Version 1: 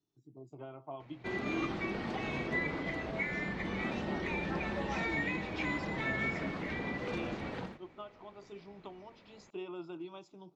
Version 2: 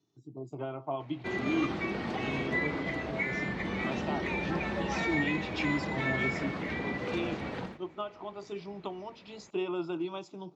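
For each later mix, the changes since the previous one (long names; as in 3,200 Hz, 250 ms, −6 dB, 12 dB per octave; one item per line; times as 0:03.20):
speech +9.5 dB
background +3.0 dB
master: add high-pass filter 50 Hz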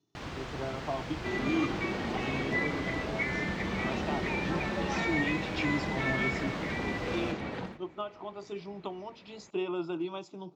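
first sound: unmuted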